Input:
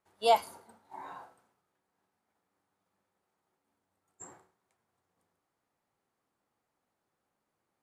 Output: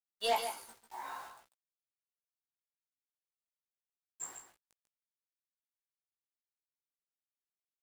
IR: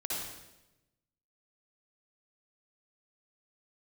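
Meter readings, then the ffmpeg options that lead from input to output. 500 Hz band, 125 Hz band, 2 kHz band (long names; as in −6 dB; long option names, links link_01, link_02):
−7.5 dB, −8.0 dB, +0.5 dB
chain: -filter_complex "[0:a]highpass=120,tiltshelf=frequency=780:gain=-8,bandreject=frequency=50:width_type=h:width=6,bandreject=frequency=100:width_type=h:width=6,bandreject=frequency=150:width_type=h:width=6,bandreject=frequency=200:width_type=h:width=6,acrossover=split=680[link_01][link_02];[link_02]alimiter=limit=-22.5dB:level=0:latency=1:release=174[link_03];[link_01][link_03]amix=inputs=2:normalize=0,asoftclip=type=hard:threshold=-25dB,acrusher=bits=8:mix=0:aa=0.000001,flanger=delay=15.5:depth=2.7:speed=2.2,aecho=1:1:144:0.355,volume=2dB"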